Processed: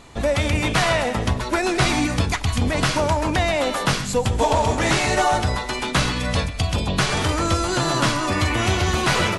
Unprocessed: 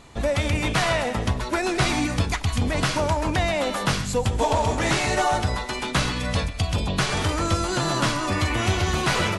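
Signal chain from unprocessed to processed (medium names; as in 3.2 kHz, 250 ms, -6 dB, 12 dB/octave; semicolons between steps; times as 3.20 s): hum notches 50/100/150/200 Hz; trim +3 dB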